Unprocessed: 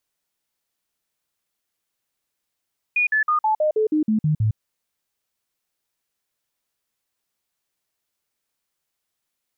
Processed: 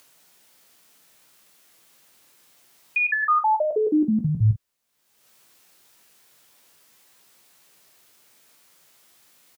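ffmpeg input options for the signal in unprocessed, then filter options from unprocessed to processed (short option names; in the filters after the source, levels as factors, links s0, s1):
-f lavfi -i "aevalsrc='0.158*clip(min(mod(t,0.16),0.11-mod(t,0.16))/0.005,0,1)*sin(2*PI*2450*pow(2,-floor(t/0.16)/2)*mod(t,0.16))':d=1.6:s=44100"
-filter_complex "[0:a]acrossover=split=100[s0][s1];[s1]acompressor=mode=upward:threshold=0.00891:ratio=2.5[s2];[s0][s2]amix=inputs=2:normalize=0,aecho=1:1:17|47:0.501|0.282"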